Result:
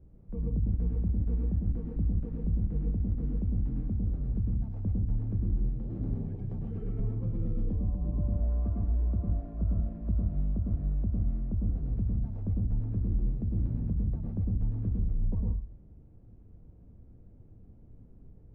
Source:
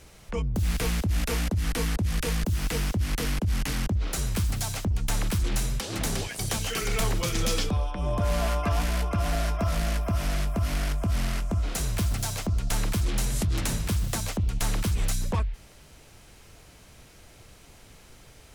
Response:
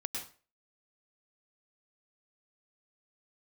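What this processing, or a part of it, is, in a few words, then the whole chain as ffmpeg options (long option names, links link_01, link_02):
television next door: -filter_complex "[0:a]acompressor=threshold=-26dB:ratio=6,lowpass=260[link_01];[1:a]atrim=start_sample=2205[link_02];[link_01][link_02]afir=irnorm=-1:irlink=0"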